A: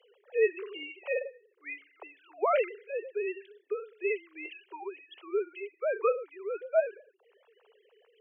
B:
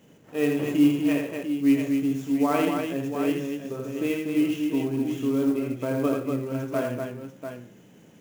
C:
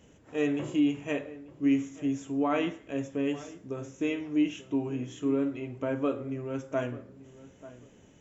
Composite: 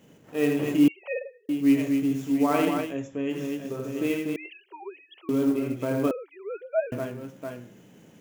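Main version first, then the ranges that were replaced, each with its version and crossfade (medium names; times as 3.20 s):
B
0.88–1.49 s: from A
2.89–3.36 s: from C, crossfade 0.16 s
4.36–5.29 s: from A
6.11–6.92 s: from A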